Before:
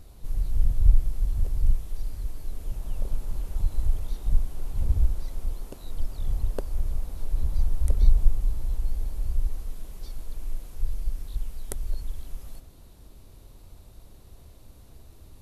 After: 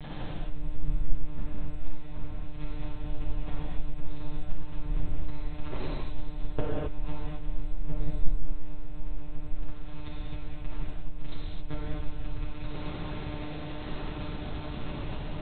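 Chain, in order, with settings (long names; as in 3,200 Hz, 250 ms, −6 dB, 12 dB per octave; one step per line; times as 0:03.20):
converter with a step at zero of −30 dBFS
one-pitch LPC vocoder at 8 kHz 150 Hz
reverb whose tail is shaped and stops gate 290 ms flat, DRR −6.5 dB
level −4.5 dB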